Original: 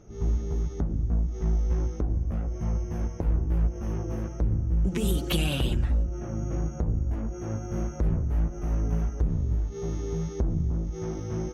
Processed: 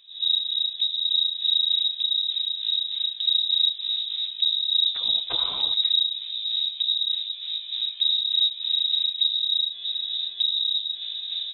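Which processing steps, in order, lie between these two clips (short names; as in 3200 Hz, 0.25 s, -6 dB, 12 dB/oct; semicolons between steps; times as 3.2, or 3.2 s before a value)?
octaver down 1 oct, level +3 dB; inverted band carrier 3800 Hz; gain -5 dB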